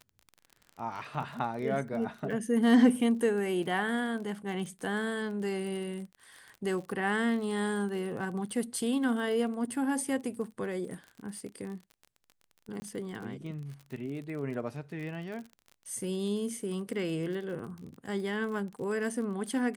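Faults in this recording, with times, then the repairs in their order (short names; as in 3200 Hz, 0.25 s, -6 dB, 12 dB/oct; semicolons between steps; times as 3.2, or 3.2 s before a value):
crackle 37/s -39 dBFS
12.8–12.82 gap 20 ms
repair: de-click; interpolate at 12.8, 20 ms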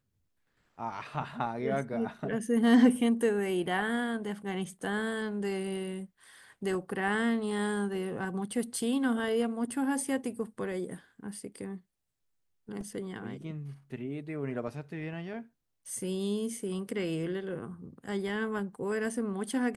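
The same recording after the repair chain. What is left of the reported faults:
none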